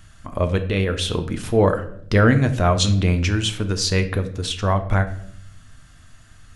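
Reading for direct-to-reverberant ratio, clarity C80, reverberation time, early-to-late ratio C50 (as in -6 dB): 7.5 dB, 15.5 dB, 0.65 s, 12.5 dB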